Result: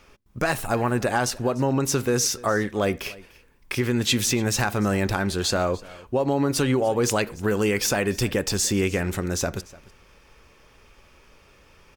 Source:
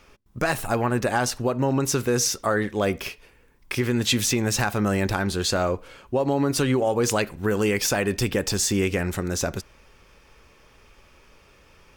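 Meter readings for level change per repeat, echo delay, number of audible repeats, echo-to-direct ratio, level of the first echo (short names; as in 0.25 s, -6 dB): no steady repeat, 0.296 s, 1, -21.5 dB, -21.5 dB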